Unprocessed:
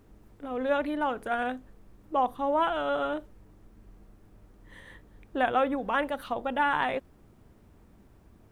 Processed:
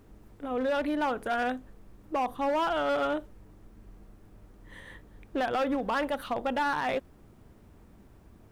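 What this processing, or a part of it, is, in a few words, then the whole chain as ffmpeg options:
limiter into clipper: -af "alimiter=limit=-20dB:level=0:latency=1:release=55,asoftclip=type=hard:threshold=-25.5dB,volume=2dB"

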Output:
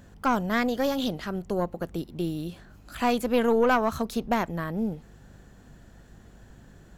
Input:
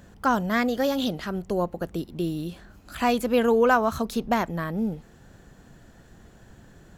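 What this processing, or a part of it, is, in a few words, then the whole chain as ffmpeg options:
valve amplifier with mains hum: -af "aeval=exprs='(tanh(3.98*val(0)+0.5)-tanh(0.5))/3.98':c=same,aeval=exprs='val(0)+0.00224*(sin(2*PI*50*n/s)+sin(2*PI*2*50*n/s)/2+sin(2*PI*3*50*n/s)/3+sin(2*PI*4*50*n/s)/4+sin(2*PI*5*50*n/s)/5)':c=same"

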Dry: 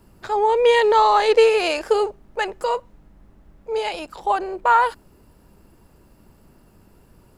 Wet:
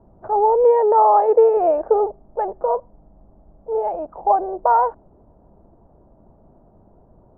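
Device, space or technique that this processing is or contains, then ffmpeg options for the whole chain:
under water: -filter_complex "[0:a]asettb=1/sr,asplit=3[a][b][c];[a]atrim=end=0.644[d];[b]atrim=start=0.64:end=1.57,asetpts=PTS-STARTPTS,afade=t=in:d=0.004:c=qsin,afade=t=out:st=0.926:d=0.004:c=qsin,highpass=f=220:p=1[e];[c]atrim=start=1.566[f];[d][e]acrossfade=d=0.004:c1=hsin:c2=qsin[g];[g][f]acrossfade=d=0.004:c1=qsin:c2=hsin,lowpass=f=1k:w=0.5412,lowpass=f=1k:w=1.3066,equalizer=f=670:t=o:w=0.56:g=10"

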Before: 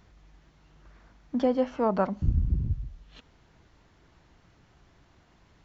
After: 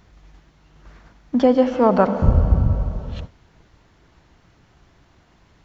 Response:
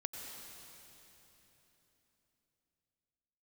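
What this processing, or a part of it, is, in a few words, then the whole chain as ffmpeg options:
keyed gated reverb: -filter_complex "[0:a]asplit=3[a][b][c];[1:a]atrim=start_sample=2205[d];[b][d]afir=irnorm=-1:irlink=0[e];[c]apad=whole_len=248764[f];[e][f]sidechaingate=range=-33dB:threshold=-54dB:ratio=16:detection=peak,volume=-0.5dB[g];[a][g]amix=inputs=2:normalize=0,volume=5dB"

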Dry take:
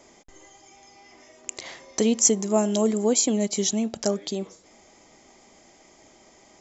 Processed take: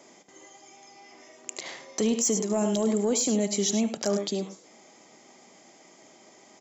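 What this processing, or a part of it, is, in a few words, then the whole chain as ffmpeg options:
soft clipper into limiter: -filter_complex "[0:a]highpass=f=140:w=0.5412,highpass=f=140:w=1.3066,asettb=1/sr,asplit=3[a][b][c];[a]atrim=end=3.674[d];[b]atrim=start=3.67:end=4.23,asetpts=PTS-STARTPTS,afade=t=in:d=0.004:c=qsin,afade=t=out:st=0.556:d=0.004:c=qsin,equalizer=f=1.8k:w=0.37:g=3.5[e];[c]atrim=start=4.226[f];[d][e]acrossfade=d=0.004:c1=hsin:c2=qsin[g];[g][f]acrossfade=d=0.004:c1=qsin:c2=hsin,aecho=1:1:74|104:0.2|0.2,asoftclip=type=tanh:threshold=-9.5dB,alimiter=limit=-17.5dB:level=0:latency=1:release=12"

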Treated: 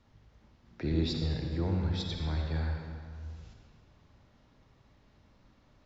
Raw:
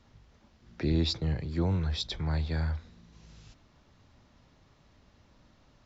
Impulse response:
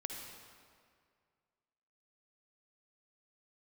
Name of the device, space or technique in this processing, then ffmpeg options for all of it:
swimming-pool hall: -filter_complex "[1:a]atrim=start_sample=2205[a];[0:a][a]afir=irnorm=-1:irlink=0,highshelf=f=4.2k:g=-5,volume=-1dB"

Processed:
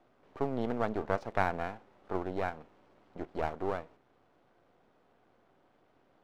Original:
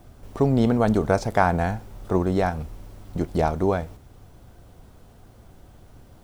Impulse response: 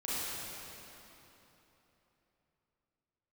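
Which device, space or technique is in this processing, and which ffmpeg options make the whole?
crystal radio: -af "highpass=310,lowpass=2.6k,aeval=exprs='if(lt(val(0),0),0.251*val(0),val(0))':c=same,volume=-7dB"

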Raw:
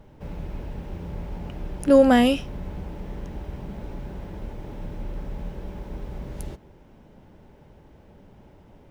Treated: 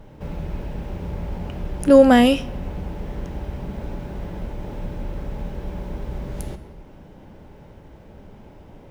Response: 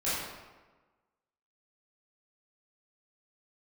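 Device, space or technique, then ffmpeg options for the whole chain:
ducked reverb: -filter_complex "[0:a]asplit=3[a][b][c];[1:a]atrim=start_sample=2205[d];[b][d]afir=irnorm=-1:irlink=0[e];[c]apad=whole_len=392692[f];[e][f]sidechaincompress=threshold=-34dB:ratio=8:attack=16:release=766,volume=-11.5dB[g];[a][g]amix=inputs=2:normalize=0,volume=3.5dB"

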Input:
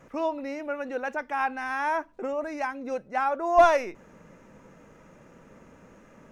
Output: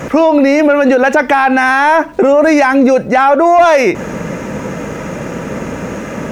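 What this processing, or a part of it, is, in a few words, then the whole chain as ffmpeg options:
mastering chain: -af "highpass=53,equalizer=f=1.1k:t=o:w=0.65:g=-3,acompressor=threshold=-31dB:ratio=2.5,asoftclip=type=tanh:threshold=-22dB,alimiter=level_in=32.5dB:limit=-1dB:release=50:level=0:latency=1,volume=-1dB"

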